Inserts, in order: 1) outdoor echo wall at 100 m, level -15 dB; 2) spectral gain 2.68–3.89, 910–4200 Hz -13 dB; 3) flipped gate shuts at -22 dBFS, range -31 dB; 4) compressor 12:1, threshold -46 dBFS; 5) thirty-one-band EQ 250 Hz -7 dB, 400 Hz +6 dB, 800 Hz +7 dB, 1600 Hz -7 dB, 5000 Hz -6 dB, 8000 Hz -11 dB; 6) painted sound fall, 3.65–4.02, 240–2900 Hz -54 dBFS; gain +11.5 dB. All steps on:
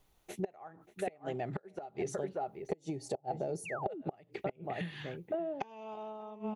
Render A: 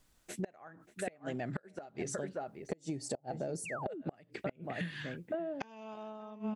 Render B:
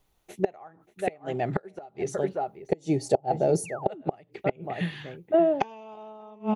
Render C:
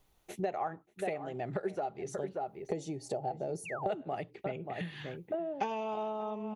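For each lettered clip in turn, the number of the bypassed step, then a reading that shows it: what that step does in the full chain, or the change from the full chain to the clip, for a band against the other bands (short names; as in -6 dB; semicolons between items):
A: 5, loudness change -1.0 LU; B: 4, mean gain reduction 7.0 dB; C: 3, momentary loudness spread change -2 LU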